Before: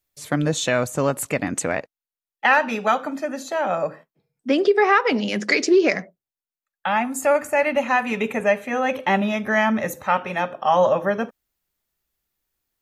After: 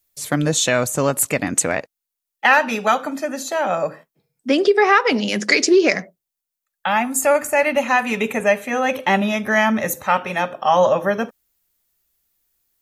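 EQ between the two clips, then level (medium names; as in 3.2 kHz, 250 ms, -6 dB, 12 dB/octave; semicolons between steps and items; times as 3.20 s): treble shelf 4.9 kHz +9.5 dB; +2.0 dB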